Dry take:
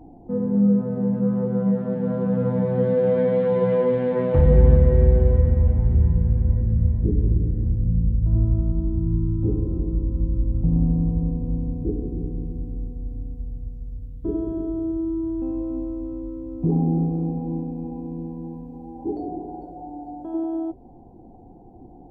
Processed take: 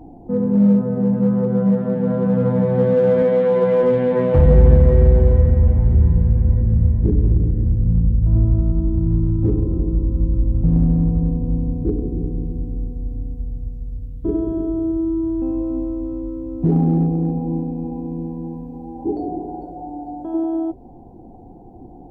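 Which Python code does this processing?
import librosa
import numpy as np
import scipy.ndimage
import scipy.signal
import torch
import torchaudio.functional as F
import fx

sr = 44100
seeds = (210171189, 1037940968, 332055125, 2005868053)

p1 = fx.highpass(x, sr, hz=200.0, slope=12, at=(3.22, 3.83))
p2 = np.clip(p1, -10.0 ** (-17.5 / 20.0), 10.0 ** (-17.5 / 20.0))
p3 = p1 + (p2 * librosa.db_to_amplitude(-8.0))
y = p3 * librosa.db_to_amplitude(2.0)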